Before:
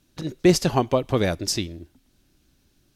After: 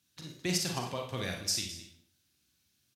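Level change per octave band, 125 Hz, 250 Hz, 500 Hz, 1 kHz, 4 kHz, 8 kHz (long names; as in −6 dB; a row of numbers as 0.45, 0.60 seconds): −13.0, −16.0, −17.5, −13.5, −4.5, −4.0 decibels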